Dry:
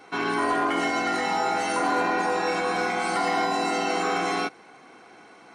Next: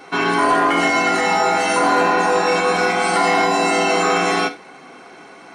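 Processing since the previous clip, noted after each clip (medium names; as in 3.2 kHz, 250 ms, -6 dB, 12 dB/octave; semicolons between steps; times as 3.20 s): gated-style reverb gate 120 ms falling, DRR 7 dB; trim +8 dB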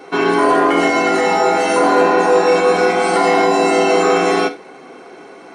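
peaking EQ 420 Hz +9 dB 1.3 oct; trim -1 dB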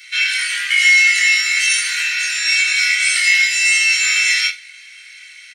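steep high-pass 1.9 kHz 48 dB/octave; doubling 24 ms -2.5 dB; trim +8.5 dB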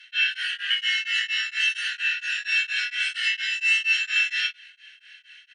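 two resonant band-passes 2.2 kHz, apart 0.75 oct; tremolo of two beating tones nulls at 4.3 Hz; trim +2.5 dB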